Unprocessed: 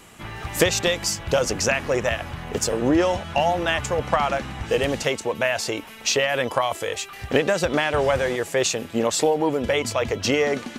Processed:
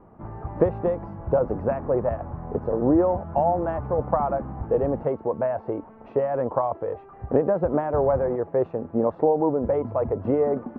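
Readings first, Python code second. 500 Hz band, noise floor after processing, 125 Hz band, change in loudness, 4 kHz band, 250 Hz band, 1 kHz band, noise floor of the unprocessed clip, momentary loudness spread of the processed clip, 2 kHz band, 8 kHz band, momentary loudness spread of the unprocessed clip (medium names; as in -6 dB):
0.0 dB, -47 dBFS, 0.0 dB, -2.0 dB, under -40 dB, 0.0 dB, -1.5 dB, -40 dBFS, 9 LU, -20.0 dB, under -40 dB, 6 LU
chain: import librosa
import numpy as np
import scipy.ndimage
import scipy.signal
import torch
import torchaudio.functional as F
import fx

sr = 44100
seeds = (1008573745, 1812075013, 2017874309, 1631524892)

y = scipy.signal.sosfilt(scipy.signal.butter(4, 1000.0, 'lowpass', fs=sr, output='sos'), x)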